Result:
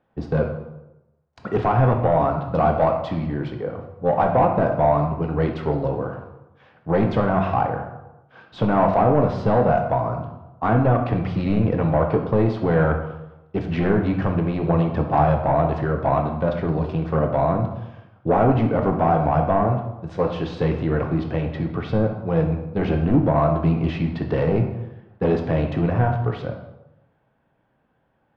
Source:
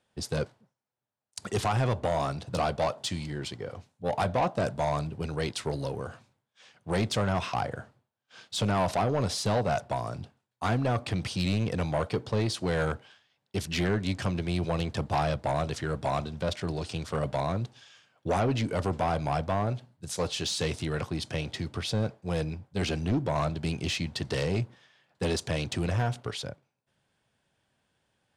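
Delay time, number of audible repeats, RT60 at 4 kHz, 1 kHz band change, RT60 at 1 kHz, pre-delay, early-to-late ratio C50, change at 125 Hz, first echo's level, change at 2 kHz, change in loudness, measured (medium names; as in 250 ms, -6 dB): no echo, no echo, 0.65 s, +10.0 dB, 0.95 s, 3 ms, 6.5 dB, +9.0 dB, no echo, +4.0 dB, +9.0 dB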